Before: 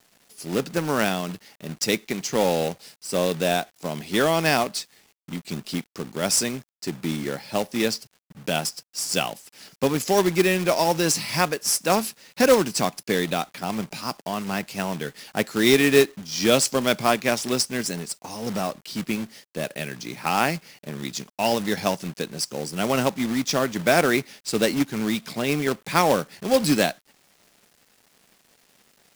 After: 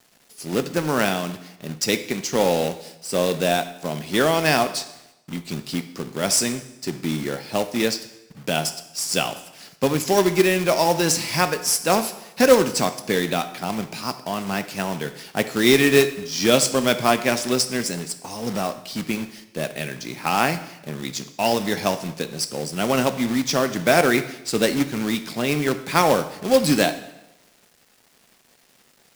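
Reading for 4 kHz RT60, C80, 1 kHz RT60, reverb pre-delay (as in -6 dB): 0.85 s, 15.0 dB, 0.95 s, 4 ms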